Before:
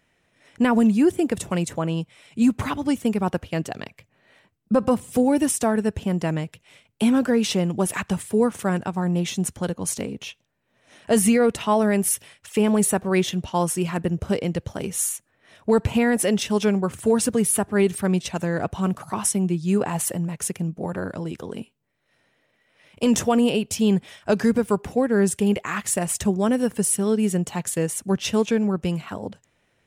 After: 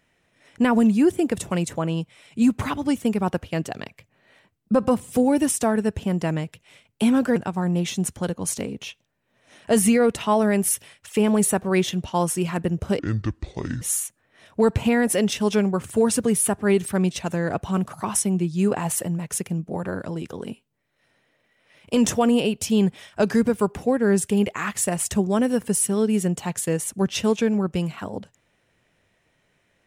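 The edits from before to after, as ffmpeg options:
-filter_complex "[0:a]asplit=4[s0][s1][s2][s3];[s0]atrim=end=7.362[s4];[s1]atrim=start=8.758:end=14.394[s5];[s2]atrim=start=14.39:end=14.91,asetpts=PTS-STARTPTS,asetrate=27783,aresample=44100[s6];[s3]atrim=start=14.906[s7];[s4][s5]acrossfade=d=0.004:c1=hsin:c2=hsin[s8];[s8][s6]acrossfade=d=0.004:c1=hsin:c2=hsin[s9];[s9][s7]acrossfade=d=0.004:c1=hsin:c2=hsin"

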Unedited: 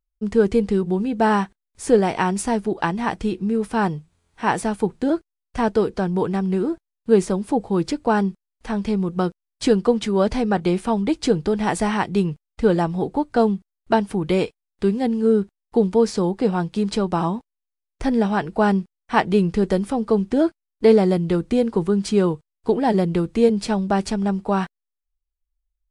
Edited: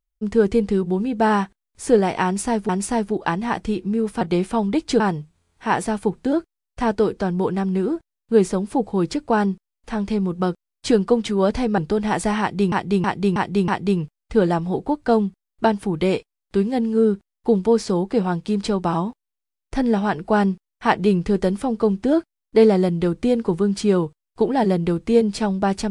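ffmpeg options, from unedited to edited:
-filter_complex "[0:a]asplit=9[s0][s1][s2][s3][s4][s5][s6][s7][s8];[s0]atrim=end=2.692[s9];[s1]atrim=start=2.248:end=3.772[s10];[s2]atrim=start=10.548:end=11.342[s11];[s3]atrim=start=3.768:end=10.552[s12];[s4]atrim=start=11.338:end=12.282[s13];[s5]atrim=start=11.958:end=12.282[s14];[s6]atrim=start=11.958:end=12.282[s15];[s7]atrim=start=11.958:end=12.282[s16];[s8]atrim=start=11.958[s17];[s9][s10]acrossfade=d=0.004:c1=hsin:c2=hsin[s18];[s18][s11]acrossfade=d=0.004:c1=hsin:c2=hsin[s19];[s19][s12]acrossfade=d=0.004:c1=hsin:c2=hsin[s20];[s20][s13]acrossfade=d=0.004:c1=hsin:c2=hsin[s21];[s21][s14]acrossfade=d=0.004:c1=hsin:c2=hsin[s22];[s22][s15]acrossfade=d=0.004:c1=hsin:c2=hsin[s23];[s23][s16]acrossfade=d=0.004:c1=hsin:c2=hsin[s24];[s24][s17]acrossfade=d=0.004:c1=hsin:c2=hsin"

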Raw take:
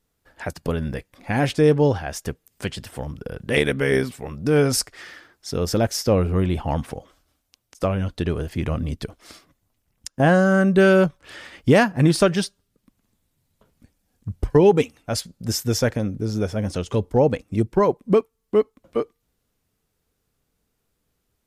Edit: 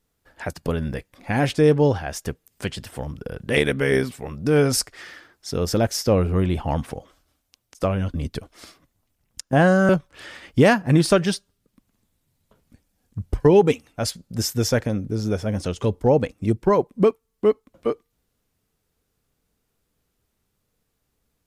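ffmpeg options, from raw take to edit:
-filter_complex "[0:a]asplit=3[s0][s1][s2];[s0]atrim=end=8.142[s3];[s1]atrim=start=8.808:end=10.562[s4];[s2]atrim=start=10.988[s5];[s3][s4]acrossfade=d=0.004:c1=hsin:c2=hsin[s6];[s6][s5]acrossfade=d=0.004:c1=hsin:c2=hsin"

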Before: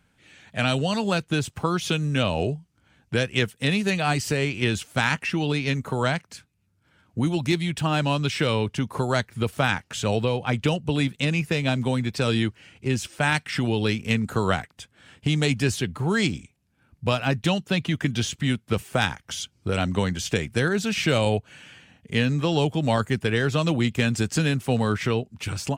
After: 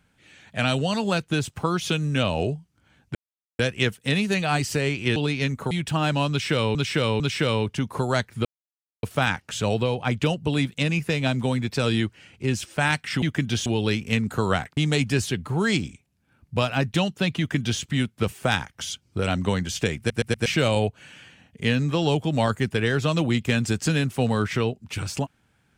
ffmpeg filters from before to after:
-filter_complex "[0:a]asplit=14[s0][s1][s2][s3][s4][s5][s6][s7][s8][s9][s10][s11][s12][s13];[s0]atrim=end=3.15,asetpts=PTS-STARTPTS,afade=t=out:st=3.146:d=0.004:c=hsin,apad=pad_dur=0.44[s14];[s1]atrim=start=3.15:end=4.722,asetpts=PTS-STARTPTS,afade=t=in:d=0.004:c=hsin[s15];[s2]atrim=start=5.418:end=5.972[s16];[s3]atrim=start=7.608:end=8.652[s17];[s4]atrim=start=8.198:end=8.652[s18];[s5]atrim=start=8.198:end=9.45,asetpts=PTS-STARTPTS,afade=t=out:st=1.248:d=0.004:c=hsin,apad=pad_dur=0.58[s19];[s6]atrim=start=9.45:end=13.642,asetpts=PTS-STARTPTS,afade=t=in:d=0.004:c=hsin[s20];[s7]atrim=start=17.878:end=18.322[s21];[s8]atrim=start=13.638:end=14.752[s22];[s9]atrim=start=15.268:end=20.602[s23];[s10]atrim=start=20.478:end=20.602[s24];[s11]atrim=start=20.478:end=20.602[s25];[s12]atrim=start=20.478:end=20.602[s26];[s13]atrim=start=20.958[s27];[s14][s15]concat=n=2:v=0:a=1[s28];[s28][s16]acrossfade=d=0.004:c1=hsin:c2=hsin[s29];[s29][s17]acrossfade=d=0.004:c1=hsin:c2=hsin[s30];[s30][s18]acrossfade=d=0.004:c1=hsin:c2=hsin[s31];[s19][s20]concat=n=2:v=0:a=1[s32];[s31][s32]acrossfade=d=0.004:c1=hsin:c2=hsin[s33];[s33][s21]acrossfade=d=0.004:c1=hsin:c2=hsin[s34];[s34][s22]acrossfade=d=0.004:c1=hsin:c2=hsin[s35];[s35][s23]acrossfade=d=0.004:c1=hsin:c2=hsin[s36];[s36][s24]acrossfade=d=0.004:c1=hsin:c2=hsin[s37];[s37][s25]acrossfade=d=0.004:c1=hsin:c2=hsin[s38];[s38][s26]acrossfade=d=0.004:c1=hsin:c2=hsin[s39];[s39][s27]acrossfade=d=0.004:c1=hsin:c2=hsin"

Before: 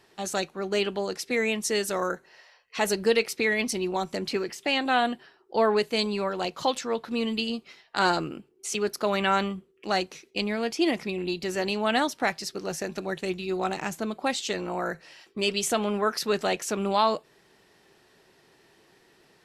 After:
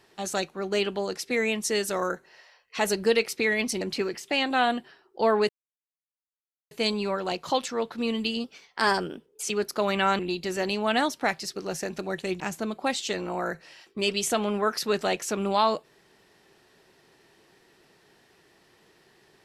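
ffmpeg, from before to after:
-filter_complex "[0:a]asplit=7[s0][s1][s2][s3][s4][s5][s6];[s0]atrim=end=3.812[s7];[s1]atrim=start=4.158:end=5.84,asetpts=PTS-STARTPTS,afade=t=out:st=1.678:d=0.004:c=hsin,apad=pad_dur=1.22[s8];[s2]atrim=start=5.84:end=7.574,asetpts=PTS-STARTPTS,afade=t=in:d=0.004:c=hsin[s9];[s3]atrim=start=7.57:end=8.68,asetpts=PTS-STARTPTS,asetrate=49392,aresample=44100,atrim=end_sample=43706,asetpts=PTS-STARTPTS[s10];[s4]atrim=start=8.676:end=9.442[s11];[s5]atrim=start=11.178:end=13.392[s12];[s6]atrim=start=13.798[s13];[s8][s9]concat=n=2:v=0:a=1[s14];[s7][s14]acrossfade=d=0.004:c1=hsin:c2=hsin[s15];[s15][s10]acrossfade=d=0.004:c1=hsin:c2=hsin[s16];[s16][s11]acrossfade=d=0.004:c1=hsin:c2=hsin[s17];[s17][s12]acrossfade=d=0.004:c1=hsin:c2=hsin[s18];[s18][s13]acrossfade=d=0.004:c1=hsin:c2=hsin"

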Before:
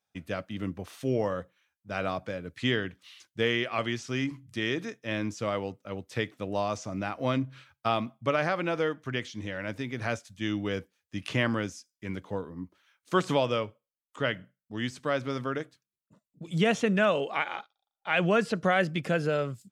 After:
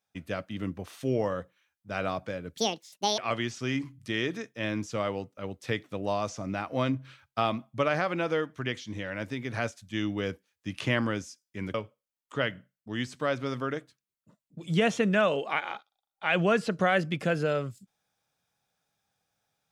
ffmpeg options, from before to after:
-filter_complex "[0:a]asplit=4[s0][s1][s2][s3];[s0]atrim=end=2.574[s4];[s1]atrim=start=2.57:end=3.66,asetpts=PTS-STARTPTS,asetrate=78498,aresample=44100,atrim=end_sample=27005,asetpts=PTS-STARTPTS[s5];[s2]atrim=start=3.656:end=12.222[s6];[s3]atrim=start=13.578[s7];[s4][s5]acrossfade=d=0.004:c1=hsin:c2=hsin[s8];[s8][s6]acrossfade=d=0.004:c1=hsin:c2=hsin[s9];[s9][s7]acrossfade=d=0.004:c1=hsin:c2=hsin"

